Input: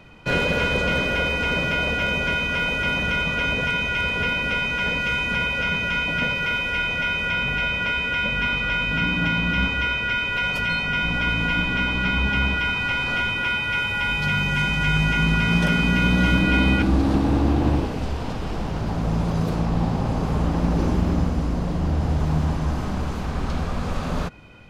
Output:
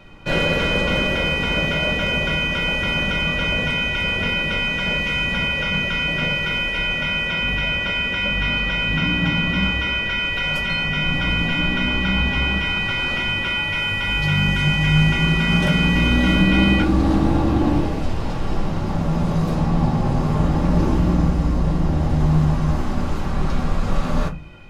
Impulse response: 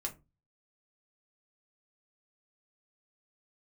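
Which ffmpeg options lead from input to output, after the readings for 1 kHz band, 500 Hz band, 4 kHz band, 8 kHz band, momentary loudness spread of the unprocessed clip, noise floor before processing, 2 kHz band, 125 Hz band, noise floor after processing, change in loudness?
-0.5 dB, +2.5 dB, +4.5 dB, +1.5 dB, 8 LU, -27 dBFS, +0.5 dB, +3.5 dB, -24 dBFS, +2.5 dB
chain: -filter_complex "[1:a]atrim=start_sample=2205[s0];[0:a][s0]afir=irnorm=-1:irlink=0,volume=1.26"

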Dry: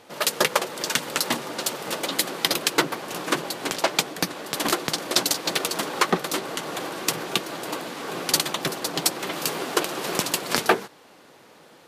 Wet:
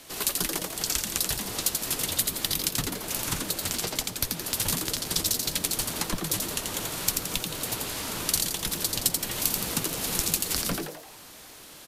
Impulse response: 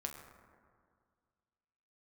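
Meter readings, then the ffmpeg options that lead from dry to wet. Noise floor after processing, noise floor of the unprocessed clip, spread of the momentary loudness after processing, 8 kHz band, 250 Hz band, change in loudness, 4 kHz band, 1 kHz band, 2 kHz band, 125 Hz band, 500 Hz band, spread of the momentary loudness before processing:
-47 dBFS, -52 dBFS, 5 LU, +1.5 dB, -5.0 dB, -2.0 dB, -3.5 dB, -10.5 dB, -8.5 dB, +2.0 dB, -10.0 dB, 7 LU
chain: -filter_complex "[0:a]acrossover=split=370[s0][s1];[s1]acompressor=threshold=0.0158:ratio=4[s2];[s0][s2]amix=inputs=2:normalize=0,afreqshift=-190,asplit=2[s3][s4];[s4]asplit=6[s5][s6][s7][s8][s9][s10];[s5]adelay=85,afreqshift=150,volume=0.631[s11];[s6]adelay=170,afreqshift=300,volume=0.295[s12];[s7]adelay=255,afreqshift=450,volume=0.14[s13];[s8]adelay=340,afreqshift=600,volume=0.0653[s14];[s9]adelay=425,afreqshift=750,volume=0.0309[s15];[s10]adelay=510,afreqshift=900,volume=0.0145[s16];[s11][s12][s13][s14][s15][s16]amix=inputs=6:normalize=0[s17];[s3][s17]amix=inputs=2:normalize=0,crystalizer=i=5:c=0,volume=0.668"

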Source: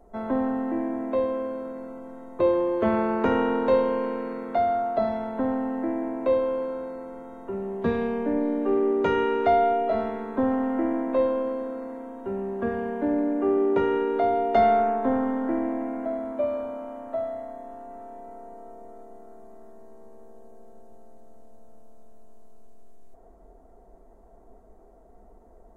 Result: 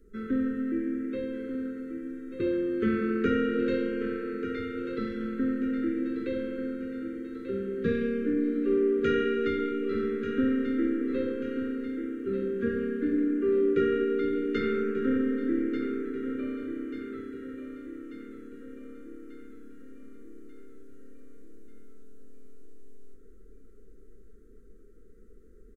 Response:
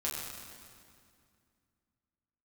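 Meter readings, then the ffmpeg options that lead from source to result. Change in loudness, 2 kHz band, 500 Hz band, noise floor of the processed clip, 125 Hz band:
-4.0 dB, -0.5 dB, -5.0 dB, -49 dBFS, -1.0 dB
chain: -af "flanger=delay=5:depth=5.1:regen=-72:speed=0.74:shape=sinusoidal,asuperstop=centerf=790:order=12:qfactor=0.98,aecho=1:1:1189|2378|3567|4756|5945|7134:0.335|0.174|0.0906|0.0471|0.0245|0.0127,volume=1.41"

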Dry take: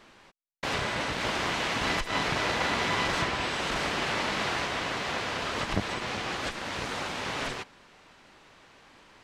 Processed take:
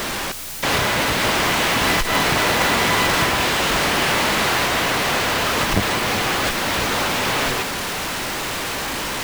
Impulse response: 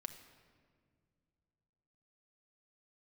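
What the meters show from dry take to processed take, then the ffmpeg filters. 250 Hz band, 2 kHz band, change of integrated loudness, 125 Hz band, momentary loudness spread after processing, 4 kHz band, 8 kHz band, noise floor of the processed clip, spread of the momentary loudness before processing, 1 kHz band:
+11.0 dB, +11.0 dB, +11.0 dB, +10.5 dB, 7 LU, +12.0 dB, +16.0 dB, -26 dBFS, 6 LU, +11.0 dB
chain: -af "aeval=exprs='val(0)+0.5*0.0447*sgn(val(0))':c=same,acrusher=bits=2:mode=log:mix=0:aa=0.000001,aeval=exprs='val(0)+0.00251*(sin(2*PI*60*n/s)+sin(2*PI*2*60*n/s)/2+sin(2*PI*3*60*n/s)/3+sin(2*PI*4*60*n/s)/4+sin(2*PI*5*60*n/s)/5)':c=same,volume=2.11"

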